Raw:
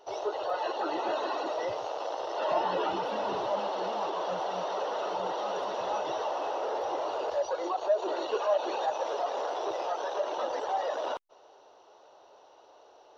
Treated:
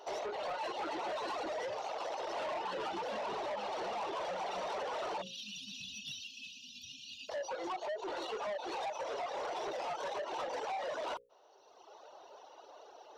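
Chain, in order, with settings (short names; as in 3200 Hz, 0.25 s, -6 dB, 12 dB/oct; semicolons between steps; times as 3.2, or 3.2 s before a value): reverb removal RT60 1.4 s; vocal rider 2 s; spectral delete 5.22–7.3, 260–2400 Hz; compressor 4:1, threshold -33 dBFS, peak gain reduction 9 dB; notches 60/120/180/240/300/360/420/480/540 Hz; soft clip -38.5 dBFS, distortion -10 dB; low shelf 170 Hz -8.5 dB; gain +4 dB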